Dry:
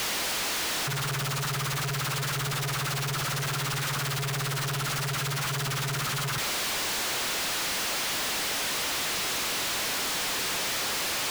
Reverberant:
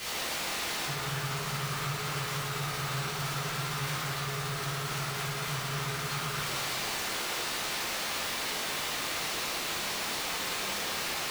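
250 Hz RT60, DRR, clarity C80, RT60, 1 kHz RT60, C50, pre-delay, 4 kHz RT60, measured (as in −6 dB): 1.5 s, −10.0 dB, 0.5 dB, 1.7 s, 1.7 s, −2.0 dB, 6 ms, 1.0 s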